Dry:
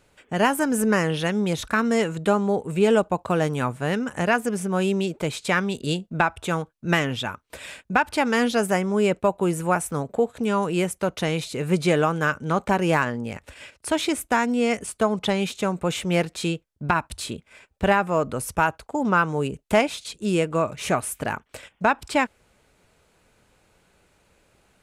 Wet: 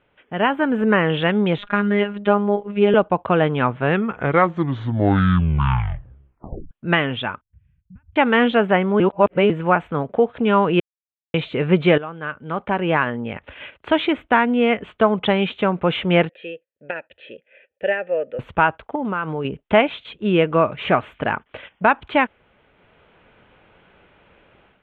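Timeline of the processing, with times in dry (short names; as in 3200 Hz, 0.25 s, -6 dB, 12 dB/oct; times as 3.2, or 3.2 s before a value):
1.58–2.94 robotiser 204 Hz
3.72 tape stop 2.99 s
7.41–8.16 inverse Chebyshev band-stop 300–8800 Hz, stop band 50 dB
9–9.5 reverse
10.8–11.34 mute
11.98–14.08 fade in, from -18 dB
16.29–18.39 vowel filter e
18.95–19.45 compressor, threshold -24 dBFS
whole clip: elliptic low-pass 3300 Hz, stop band 40 dB; low shelf 100 Hz -6.5 dB; AGC gain up to 11 dB; gain -1 dB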